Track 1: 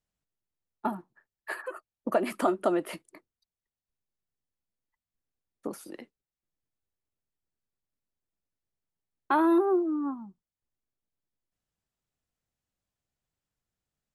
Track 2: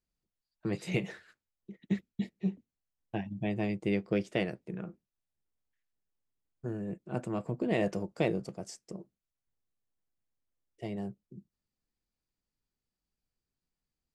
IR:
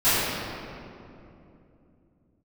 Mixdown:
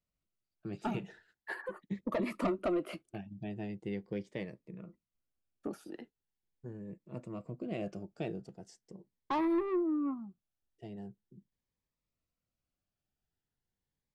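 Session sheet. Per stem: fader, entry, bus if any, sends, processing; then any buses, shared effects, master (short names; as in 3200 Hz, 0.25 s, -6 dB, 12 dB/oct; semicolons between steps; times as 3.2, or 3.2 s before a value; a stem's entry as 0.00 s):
-1.0 dB, 0.00 s, no send, high shelf 5400 Hz -6 dB; soft clip -24 dBFS, distortion -11 dB
-7.5 dB, 0.00 s, no send, dry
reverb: off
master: high shelf 7300 Hz -11 dB; cascading phaser rising 0.41 Hz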